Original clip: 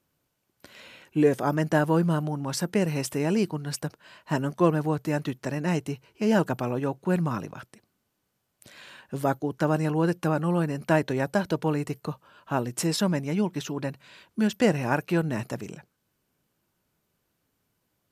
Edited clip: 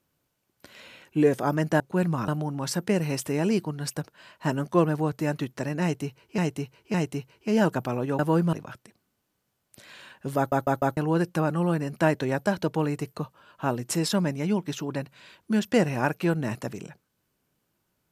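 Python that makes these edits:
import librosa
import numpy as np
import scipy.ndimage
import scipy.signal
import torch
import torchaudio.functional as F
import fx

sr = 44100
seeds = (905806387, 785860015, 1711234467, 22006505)

y = fx.edit(x, sr, fx.swap(start_s=1.8, length_s=0.34, other_s=6.93, other_length_s=0.48),
    fx.repeat(start_s=5.68, length_s=0.56, count=3),
    fx.stutter_over(start_s=9.25, slice_s=0.15, count=4), tone=tone)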